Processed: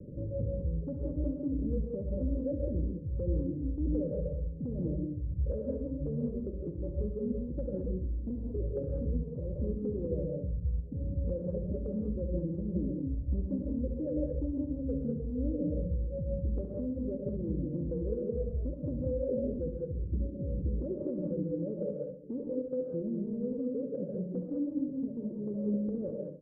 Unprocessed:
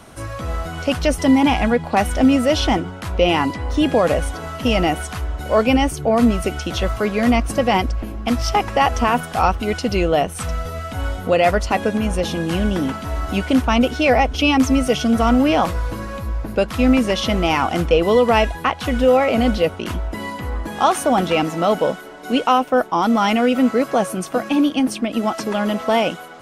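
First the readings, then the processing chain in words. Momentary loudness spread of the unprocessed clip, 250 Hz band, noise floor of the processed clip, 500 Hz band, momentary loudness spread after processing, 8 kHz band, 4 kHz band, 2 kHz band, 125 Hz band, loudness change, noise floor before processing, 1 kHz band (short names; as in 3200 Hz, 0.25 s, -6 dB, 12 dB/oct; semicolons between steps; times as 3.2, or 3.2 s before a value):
11 LU, -15.5 dB, -41 dBFS, -17.0 dB, 4 LU, under -40 dB, under -40 dB, under -40 dB, -8.5 dB, -16.5 dB, -33 dBFS, under -40 dB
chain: gate -23 dBFS, range -7 dB; Chebyshev low-pass 580 Hz, order 10; reverb removal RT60 1.4 s; bell 150 Hz +9.5 dB 0.44 oct; compressor 6:1, threshold -38 dBFS, peak gain reduction 26 dB; limiter -35.5 dBFS, peak gain reduction 10 dB; soft clip -19 dBFS, distortion -54 dB; feedback echo 67 ms, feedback 40%, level -9.5 dB; non-linear reverb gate 0.23 s rising, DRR -0.5 dB; gain +5.5 dB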